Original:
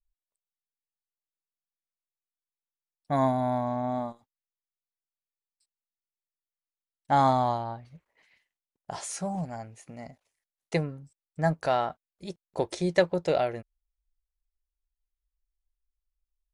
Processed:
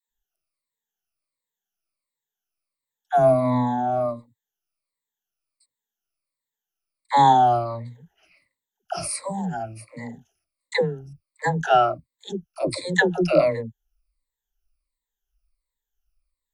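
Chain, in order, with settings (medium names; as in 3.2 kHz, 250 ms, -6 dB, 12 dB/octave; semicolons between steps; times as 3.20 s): drifting ripple filter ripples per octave 0.99, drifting -1.4 Hz, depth 23 dB; phase dispersion lows, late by 100 ms, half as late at 410 Hz; trim +1.5 dB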